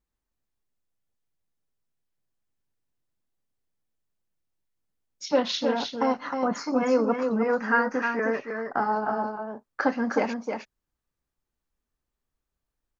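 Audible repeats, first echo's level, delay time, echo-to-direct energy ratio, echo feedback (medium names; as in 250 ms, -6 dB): 1, -5.5 dB, 311 ms, -5.5 dB, no regular repeats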